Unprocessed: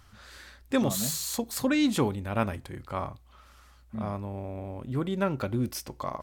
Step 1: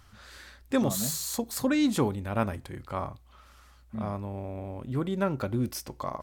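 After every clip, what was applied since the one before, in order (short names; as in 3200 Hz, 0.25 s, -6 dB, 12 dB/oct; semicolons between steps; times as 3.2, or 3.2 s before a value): dynamic EQ 2800 Hz, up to -4 dB, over -46 dBFS, Q 1.3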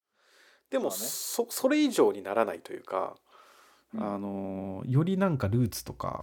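opening faded in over 1.45 s; high-pass sweep 410 Hz -> 79 Hz, 3.56–5.59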